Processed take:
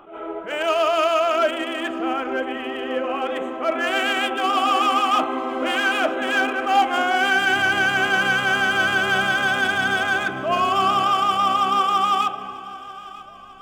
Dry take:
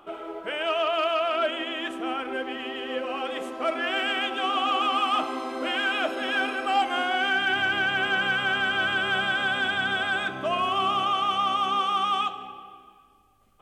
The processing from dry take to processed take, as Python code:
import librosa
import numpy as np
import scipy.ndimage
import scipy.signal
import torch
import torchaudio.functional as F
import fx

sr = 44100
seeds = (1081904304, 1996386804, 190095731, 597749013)

p1 = fx.wiener(x, sr, points=9)
p2 = p1 + fx.echo_feedback(p1, sr, ms=942, feedback_pct=52, wet_db=-19, dry=0)
p3 = fx.attack_slew(p2, sr, db_per_s=120.0)
y = p3 * 10.0 ** (6.5 / 20.0)